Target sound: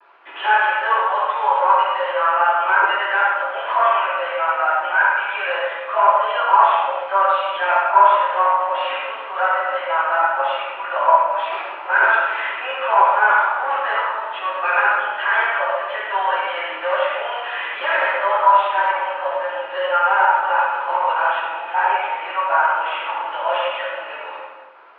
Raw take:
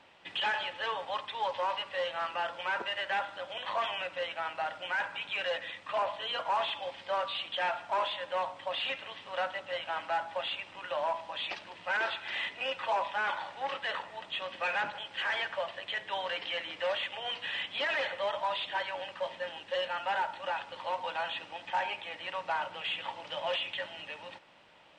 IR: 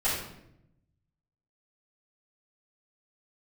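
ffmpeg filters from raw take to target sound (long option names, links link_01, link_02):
-filter_complex "[0:a]acontrast=41,acrusher=bits=7:mix=0:aa=0.000001,highpass=frequency=460:width=0.5412,highpass=frequency=460:width=1.3066,equalizer=frequency=500:width_type=q:width=4:gain=-7,equalizer=frequency=730:width_type=q:width=4:gain=-4,equalizer=frequency=1300:width_type=q:width=4:gain=5,equalizer=frequency=1900:width_type=q:width=4:gain=-6,lowpass=frequency=2100:width=0.5412,lowpass=frequency=2100:width=1.3066[link_01];[1:a]atrim=start_sample=2205,asetrate=23373,aresample=44100[link_02];[link_01][link_02]afir=irnorm=-1:irlink=0,volume=-2.5dB"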